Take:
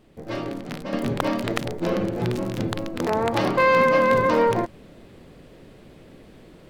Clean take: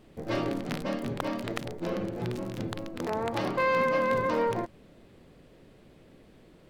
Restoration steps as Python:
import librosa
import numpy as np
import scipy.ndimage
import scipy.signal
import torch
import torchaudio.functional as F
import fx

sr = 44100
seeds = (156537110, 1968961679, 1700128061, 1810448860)

y = fx.fix_level(x, sr, at_s=0.93, step_db=-8.0)